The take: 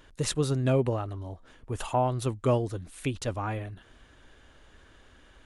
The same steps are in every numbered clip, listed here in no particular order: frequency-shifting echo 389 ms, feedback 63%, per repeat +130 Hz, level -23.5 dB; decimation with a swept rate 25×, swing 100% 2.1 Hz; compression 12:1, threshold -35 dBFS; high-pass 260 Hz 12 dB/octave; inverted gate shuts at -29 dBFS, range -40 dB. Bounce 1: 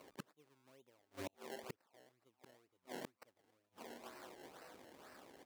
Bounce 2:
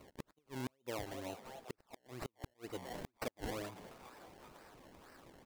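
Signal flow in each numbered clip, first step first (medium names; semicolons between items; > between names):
frequency-shifting echo > decimation with a swept rate > inverted gate > high-pass > compression; high-pass > decimation with a swept rate > frequency-shifting echo > compression > inverted gate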